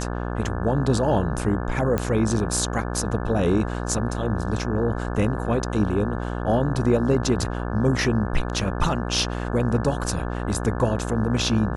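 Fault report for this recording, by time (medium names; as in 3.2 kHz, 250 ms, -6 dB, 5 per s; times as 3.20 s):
buzz 60 Hz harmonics 29 -28 dBFS
1.98 s: pop -11 dBFS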